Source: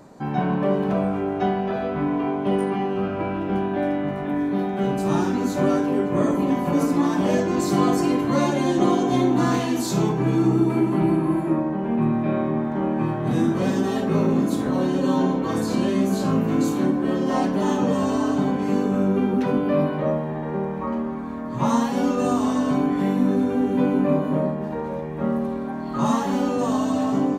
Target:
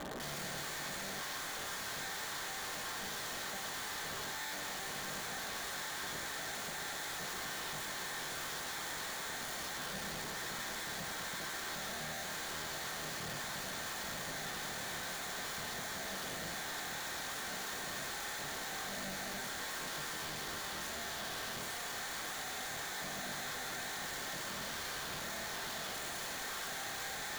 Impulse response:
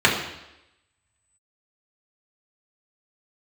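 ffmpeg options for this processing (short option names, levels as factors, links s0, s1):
-filter_complex "[0:a]aeval=exprs='(tanh(79.4*val(0)+0.3)-tanh(0.3))/79.4':c=same,highpass=180,lowpass=2100,aeval=exprs='(mod(150*val(0)+1,2)-1)/150':c=same,asplit=2[s0][s1];[1:a]atrim=start_sample=2205,highshelf=f=5600:g=11.5[s2];[s1][s2]afir=irnorm=-1:irlink=0,volume=0.0531[s3];[s0][s3]amix=inputs=2:normalize=0,volume=1.78"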